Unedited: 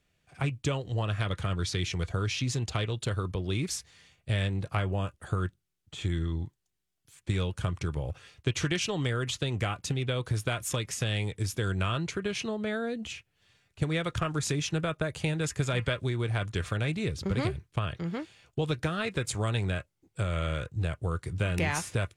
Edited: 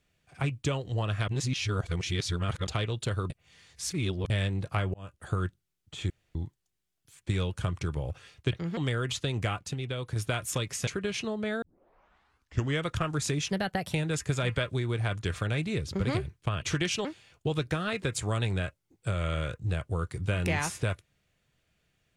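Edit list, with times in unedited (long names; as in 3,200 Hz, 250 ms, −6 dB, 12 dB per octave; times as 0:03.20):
0:01.28–0:02.67: reverse
0:03.30–0:04.30: reverse
0:04.94–0:05.27: fade in
0:06.10–0:06.35: fill with room tone
0:08.52–0:08.95: swap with 0:17.92–0:18.17
0:09.76–0:10.34: clip gain −4 dB
0:11.05–0:12.08: remove
0:12.83: tape start 1.24 s
0:14.71–0:15.24: play speed 121%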